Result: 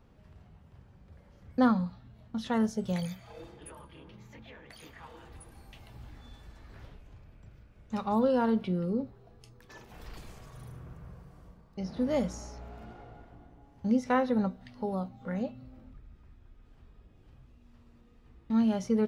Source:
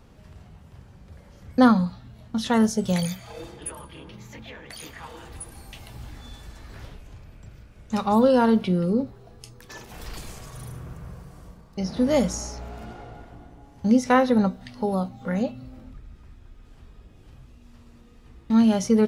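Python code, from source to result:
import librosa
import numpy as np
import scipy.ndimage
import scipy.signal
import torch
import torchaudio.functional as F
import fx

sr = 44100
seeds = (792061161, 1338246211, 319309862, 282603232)

y = fx.peak_eq(x, sr, hz=9500.0, db=-8.5, octaves=2.0)
y = y * 10.0 ** (-8.0 / 20.0)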